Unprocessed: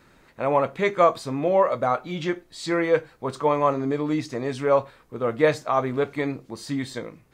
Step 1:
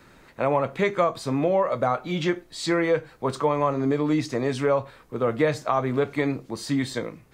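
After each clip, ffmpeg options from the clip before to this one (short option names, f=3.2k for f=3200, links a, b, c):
-filter_complex "[0:a]acrossover=split=170[a][b];[b]acompressor=threshold=-23dB:ratio=4[c];[a][c]amix=inputs=2:normalize=0,volume=3.5dB"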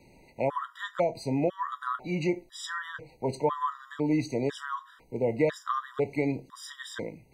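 -af "afftfilt=real='re*gt(sin(2*PI*1*pts/sr)*(1-2*mod(floor(b*sr/1024/970),2)),0)':imag='im*gt(sin(2*PI*1*pts/sr)*(1-2*mod(floor(b*sr/1024/970),2)),0)':win_size=1024:overlap=0.75,volume=-3dB"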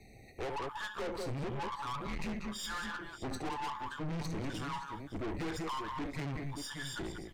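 -af "aecho=1:1:69|189|575:0.211|0.316|0.15,afreqshift=-140,aeval=exprs='(tanh(79.4*val(0)+0.4)-tanh(0.4))/79.4':c=same,volume=2dB"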